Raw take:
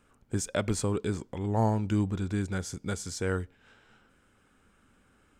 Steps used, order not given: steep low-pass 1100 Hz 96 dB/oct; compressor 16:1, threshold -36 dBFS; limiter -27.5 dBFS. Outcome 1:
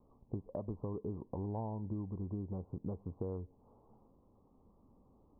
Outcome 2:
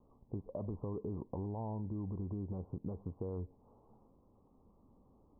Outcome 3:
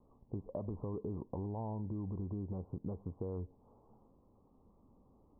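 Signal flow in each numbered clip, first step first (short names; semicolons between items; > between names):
steep low-pass > compressor > limiter; limiter > steep low-pass > compressor; steep low-pass > limiter > compressor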